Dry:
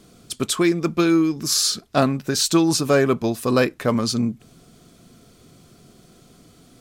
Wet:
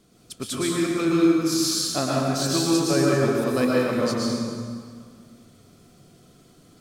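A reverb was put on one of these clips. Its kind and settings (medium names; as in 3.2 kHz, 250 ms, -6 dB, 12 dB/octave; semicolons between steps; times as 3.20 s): plate-style reverb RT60 2 s, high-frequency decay 0.75×, pre-delay 100 ms, DRR -5 dB; trim -9 dB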